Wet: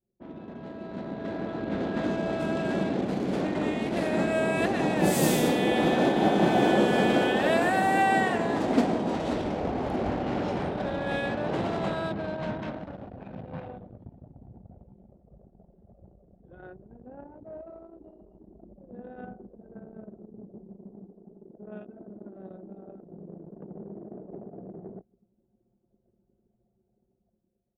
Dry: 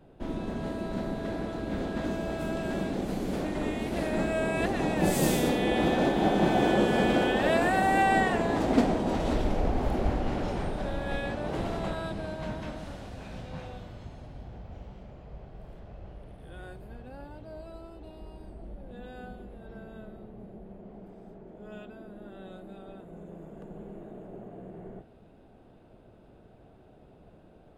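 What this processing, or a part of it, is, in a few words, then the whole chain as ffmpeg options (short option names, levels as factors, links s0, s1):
voice memo with heavy noise removal: -af "highpass=120,aecho=1:1:151|302|453|604:0.141|0.065|0.0299|0.0137,anlmdn=0.251,dynaudnorm=f=200:g=13:m=3.76,volume=0.422"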